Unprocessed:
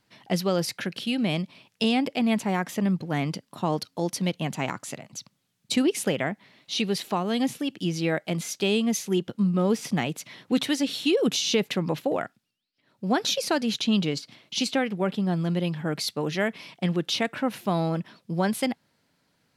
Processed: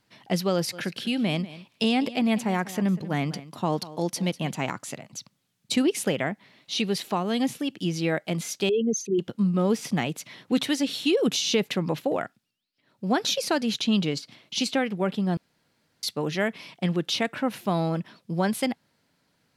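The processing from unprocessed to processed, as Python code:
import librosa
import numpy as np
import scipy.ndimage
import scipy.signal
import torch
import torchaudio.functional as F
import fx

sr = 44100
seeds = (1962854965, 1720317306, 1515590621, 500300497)

y = fx.echo_single(x, sr, ms=194, db=-16.5, at=(0.72, 4.52), fade=0.02)
y = fx.envelope_sharpen(y, sr, power=3.0, at=(8.69, 9.19))
y = fx.edit(y, sr, fx.room_tone_fill(start_s=15.37, length_s=0.66), tone=tone)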